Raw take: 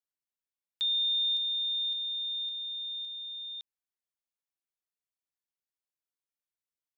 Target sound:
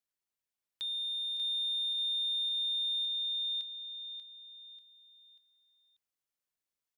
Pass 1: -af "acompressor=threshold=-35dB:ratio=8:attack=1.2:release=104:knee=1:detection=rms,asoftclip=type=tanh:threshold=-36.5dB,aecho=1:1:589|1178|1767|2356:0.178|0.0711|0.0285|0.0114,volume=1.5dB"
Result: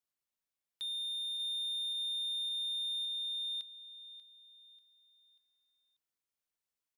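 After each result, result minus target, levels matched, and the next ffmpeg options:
soft clip: distortion +11 dB; echo-to-direct -6.5 dB
-af "acompressor=threshold=-35dB:ratio=8:attack=1.2:release=104:knee=1:detection=rms,asoftclip=type=tanh:threshold=-30dB,aecho=1:1:589|1178|1767|2356:0.178|0.0711|0.0285|0.0114,volume=1.5dB"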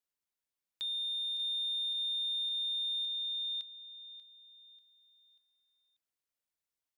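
echo-to-direct -6.5 dB
-af "acompressor=threshold=-35dB:ratio=8:attack=1.2:release=104:knee=1:detection=rms,asoftclip=type=tanh:threshold=-30dB,aecho=1:1:589|1178|1767|2356:0.376|0.15|0.0601|0.0241,volume=1.5dB"

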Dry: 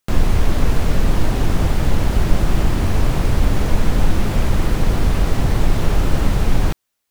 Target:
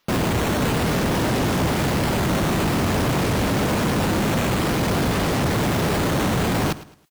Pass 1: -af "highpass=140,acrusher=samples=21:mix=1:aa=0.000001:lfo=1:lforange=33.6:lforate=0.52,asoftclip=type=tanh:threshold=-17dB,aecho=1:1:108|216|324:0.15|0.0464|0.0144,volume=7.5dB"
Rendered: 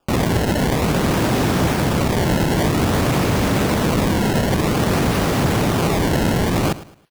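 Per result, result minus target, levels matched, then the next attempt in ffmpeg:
soft clip: distortion -8 dB; decimation with a swept rate: distortion +8 dB
-af "highpass=140,acrusher=samples=21:mix=1:aa=0.000001:lfo=1:lforange=33.6:lforate=0.52,asoftclip=type=tanh:threshold=-24.5dB,aecho=1:1:108|216|324:0.15|0.0464|0.0144,volume=7.5dB"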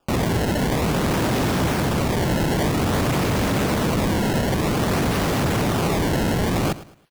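decimation with a swept rate: distortion +8 dB
-af "highpass=140,acrusher=samples=5:mix=1:aa=0.000001:lfo=1:lforange=8:lforate=0.52,asoftclip=type=tanh:threshold=-24.5dB,aecho=1:1:108|216|324:0.15|0.0464|0.0144,volume=7.5dB"

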